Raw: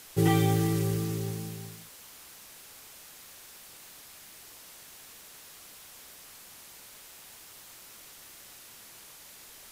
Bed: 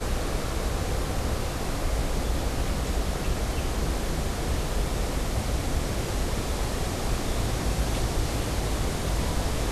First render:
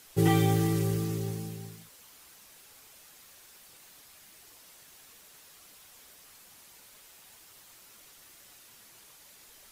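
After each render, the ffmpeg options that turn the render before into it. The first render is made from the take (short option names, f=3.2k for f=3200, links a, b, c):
-af "afftdn=nr=6:nf=-51"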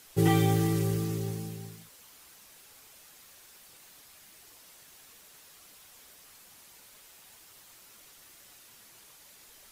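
-af anull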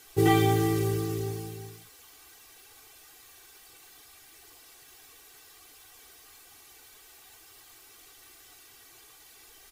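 -af "equalizer=f=8.4k:t=o:w=1.4:g=-2,aecho=1:1:2.6:0.78"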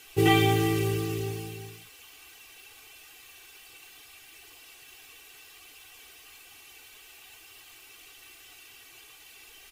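-af "equalizer=f=2.7k:w=2.5:g=11.5"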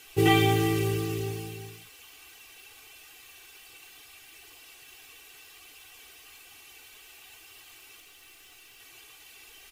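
-filter_complex "[0:a]asettb=1/sr,asplit=3[a][b][c];[a]atrim=end=8.004[d];[b]atrim=start=8:end=8.8,asetpts=PTS-STARTPTS,afade=t=in:d=0.004:c=qsin,afade=t=out:st=0.796:d=0.004:c=qsin,aeval=exprs='(tanh(178*val(0)+0.4)-tanh(0.4))/178':c=same[e];[c]atrim=start=8.796[f];[d][e]acrossfade=d=0.004:c1=hsin:c2=qsin[g];[g][f]acrossfade=d=0.004:c1=qsin:c2=hsin"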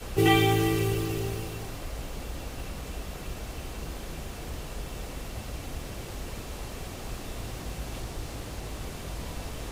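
-filter_complex "[1:a]volume=-10dB[a];[0:a][a]amix=inputs=2:normalize=0"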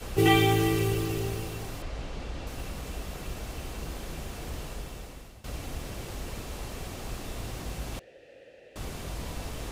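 -filter_complex "[0:a]asettb=1/sr,asplit=3[a][b][c];[a]atrim=end=1.824[d];[b]atrim=start=1.82:end=2.47,asetpts=PTS-STARTPTS,afade=t=in:d=0.004:c=qsin,afade=t=out:st=0.646:d=0.004:c=qsin,lowpass=5.2k[e];[c]atrim=start=2.466[f];[d][e]acrossfade=d=0.004:c1=hsin:c2=qsin[g];[g][f]acrossfade=d=0.004:c1=qsin:c2=hsin,asettb=1/sr,asplit=3[h][i][j];[h]atrim=end=7.994[k];[i]atrim=start=7.99:end=8.76,asetpts=PTS-STARTPTS,afade=t=in:d=0.004:c=qsin,afade=t=out:st=0.766:d=0.004:c=qsin,asplit=3[l][m][n];[l]bandpass=f=530:t=q:w=8,volume=0dB[o];[m]bandpass=f=1.84k:t=q:w=8,volume=-6dB[p];[n]bandpass=f=2.48k:t=q:w=8,volume=-9dB[q];[o][p][q]amix=inputs=3:normalize=0[r];[j]atrim=start=8.756[s];[k][r]acrossfade=d=0.004:c1=hsin:c2=qsin[t];[t][s]acrossfade=d=0.004:c1=qsin:c2=hsin,asplit=2[u][v];[u]atrim=end=5.44,asetpts=PTS-STARTPTS,afade=t=out:st=4.64:d=0.8:silence=0.133352[w];[v]atrim=start=5.44,asetpts=PTS-STARTPTS,afade=t=in:d=0.004:c=hsin:silence=0.133352[x];[w][x]concat=n=2:v=0:a=1"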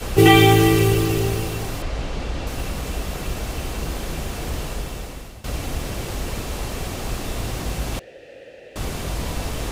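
-af "volume=10dB,alimiter=limit=-1dB:level=0:latency=1"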